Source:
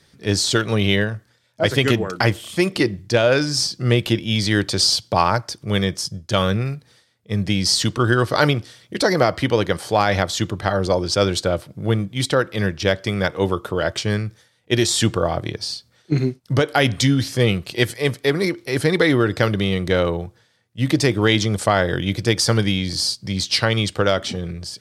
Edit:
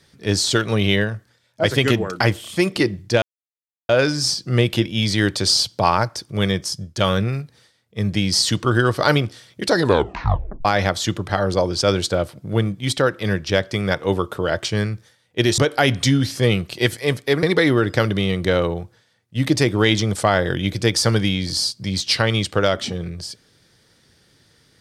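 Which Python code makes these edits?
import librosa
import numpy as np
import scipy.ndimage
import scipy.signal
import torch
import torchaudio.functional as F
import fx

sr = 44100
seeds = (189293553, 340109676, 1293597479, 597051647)

y = fx.edit(x, sr, fx.insert_silence(at_s=3.22, length_s=0.67),
    fx.tape_stop(start_s=9.04, length_s=0.94),
    fx.cut(start_s=14.91, length_s=1.64),
    fx.cut(start_s=18.4, length_s=0.46), tone=tone)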